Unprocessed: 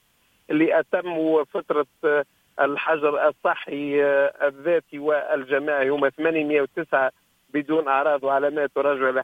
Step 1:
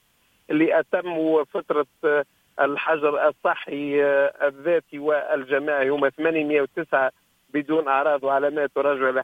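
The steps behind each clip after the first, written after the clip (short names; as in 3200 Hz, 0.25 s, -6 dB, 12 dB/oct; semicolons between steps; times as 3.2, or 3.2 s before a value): nothing audible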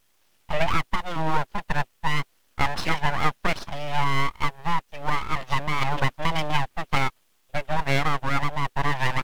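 wow and flutter 28 cents; full-wave rectifier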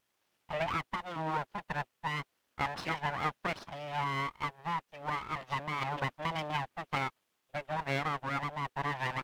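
HPF 160 Hz 6 dB/oct; high shelf 3500 Hz -6.5 dB; gain -7.5 dB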